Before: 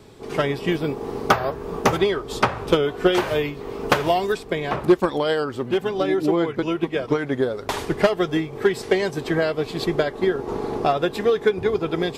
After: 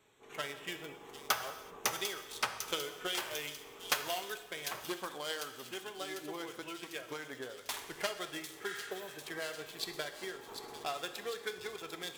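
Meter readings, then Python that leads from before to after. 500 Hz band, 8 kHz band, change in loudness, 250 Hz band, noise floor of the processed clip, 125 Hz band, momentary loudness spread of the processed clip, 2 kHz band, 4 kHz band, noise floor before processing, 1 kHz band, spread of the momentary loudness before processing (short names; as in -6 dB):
-22.5 dB, -1.5 dB, -17.0 dB, -25.0 dB, -53 dBFS, -27.5 dB, 9 LU, -12.5 dB, -8.0 dB, -37 dBFS, -16.5 dB, 5 LU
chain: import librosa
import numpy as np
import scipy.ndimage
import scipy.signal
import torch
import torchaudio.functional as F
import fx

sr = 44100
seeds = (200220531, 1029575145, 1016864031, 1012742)

p1 = fx.wiener(x, sr, points=9)
p2 = fx.spec_repair(p1, sr, seeds[0], start_s=8.7, length_s=0.46, low_hz=1200.0, high_hz=11000.0, source='both')
p3 = scipy.signal.lfilter([1.0, -0.97], [1.0], p2)
p4 = p3 + fx.echo_wet_highpass(p3, sr, ms=748, feedback_pct=57, hz=3700.0, wet_db=-6, dry=0)
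y = fx.rev_gated(p4, sr, seeds[1], gate_ms=410, shape='falling', drr_db=8.5)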